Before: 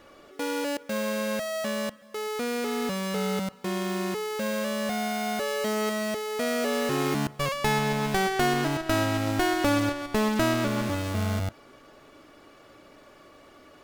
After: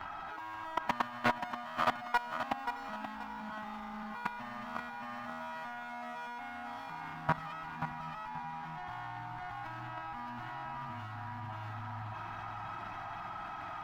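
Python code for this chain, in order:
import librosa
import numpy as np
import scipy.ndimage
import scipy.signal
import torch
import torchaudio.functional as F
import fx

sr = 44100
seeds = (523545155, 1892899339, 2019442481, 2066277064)

y = fx.pitch_bins(x, sr, semitones=2.0)
y = 10.0 ** (-30.0 / 20.0) * np.tanh(y / 10.0 ** (-30.0 / 20.0))
y = fx.curve_eq(y, sr, hz=(190.0, 530.0, 800.0, 9000.0, 14000.0), db=(0, -24, 11, -18, -11))
y = fx.over_compress(y, sr, threshold_db=-41.0, ratio=-1.0)
y = fx.high_shelf(y, sr, hz=9700.0, db=-4.5)
y = y + 10.0 ** (-3.5 / 20.0) * np.pad(y, (int(622 * sr / 1000.0), 0))[:len(y)]
y = fx.level_steps(y, sr, step_db=18)
y = fx.echo_feedback(y, sr, ms=530, feedback_pct=34, wet_db=-8.0)
y = fx.doppler_dist(y, sr, depth_ms=0.33)
y = y * librosa.db_to_amplitude(10.5)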